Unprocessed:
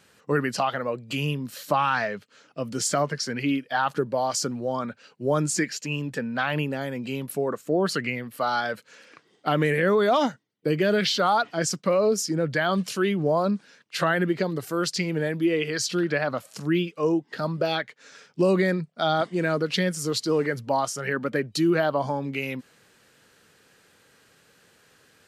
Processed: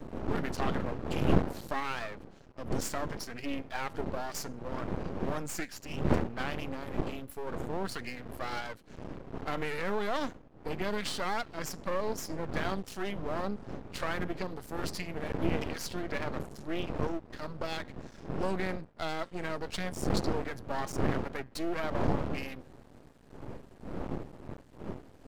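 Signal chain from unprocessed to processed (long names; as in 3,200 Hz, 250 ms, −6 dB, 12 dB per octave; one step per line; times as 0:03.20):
wind on the microphone 340 Hz −26 dBFS
tuned comb filter 270 Hz, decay 0.39 s, harmonics all, mix 40%
half-wave rectification
level −3.5 dB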